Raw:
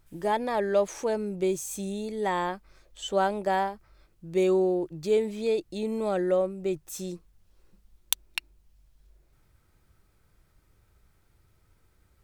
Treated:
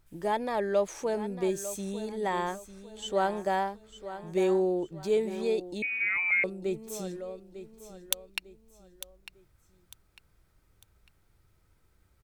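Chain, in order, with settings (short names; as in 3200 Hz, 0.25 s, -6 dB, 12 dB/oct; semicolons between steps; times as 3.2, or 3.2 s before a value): on a send: feedback echo 0.9 s, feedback 35%, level -13 dB; 5.82–6.44 on the sum: inverted band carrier 2700 Hz; gain -2.5 dB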